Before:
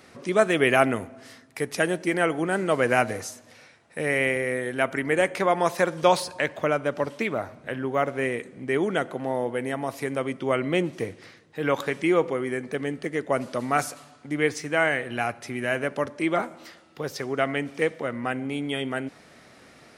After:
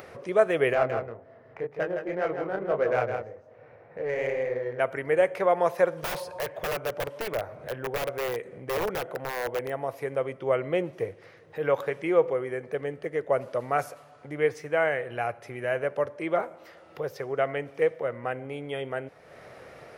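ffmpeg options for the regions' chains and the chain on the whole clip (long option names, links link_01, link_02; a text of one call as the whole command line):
ffmpeg -i in.wav -filter_complex "[0:a]asettb=1/sr,asplit=3[link_01][link_02][link_03];[link_01]atrim=end=0.734[link_04];[link_02]atrim=start=0.73:end=4.8,asetpts=PTS-STARTPTS,afade=type=in:duration=0.004:curve=qsin,afade=type=out:start_time=4.066:duration=0.004:curve=qsin,flanger=delay=19:depth=7.5:speed=1.9,adynamicsmooth=sensitivity=1.5:basefreq=1200,aecho=1:1:161:0.447,atrim=end_sample=179487[link_05];[link_03]atrim=start=4.796[link_06];[link_04][link_05]acrossfade=duration=0.004:curve1=hsin:curve2=qsin[link_07];[link_07][link_06]acrossfade=duration=0.004:curve1=qsin:curve2=hsin,asettb=1/sr,asplit=3[link_08][link_09][link_10];[link_08]atrim=end=6.034[link_11];[link_09]atrim=start=6.03:end=9.7,asetpts=PTS-STARTPTS,afade=type=in:duration=0.004:curve=qsin,afade=type=out:start_time=3.666:duration=0.004:curve=qsin,acompressor=mode=upward:threshold=-32dB:ratio=2.5:attack=3.2:release=140:knee=2.83:detection=peak,aeval=exprs='(mod(9.44*val(0)+1,2)-1)/9.44':channel_layout=same[link_12];[link_10]atrim=start=9.696[link_13];[link_11][link_12]acrossfade=duration=0.004:curve1=hsin:curve2=qsin[link_14];[link_14][link_13]acrossfade=duration=0.004:curve1=qsin:curve2=hsin,equalizer=frequency=125:width_type=o:width=1:gain=3,equalizer=frequency=250:width_type=o:width=1:gain=-11,equalizer=frequency=500:width_type=o:width=1:gain=9,equalizer=frequency=4000:width_type=o:width=1:gain=-6,equalizer=frequency=8000:width_type=o:width=1:gain=-10,acompressor=mode=upward:threshold=-33dB:ratio=2.5,volume=-4.5dB" out.wav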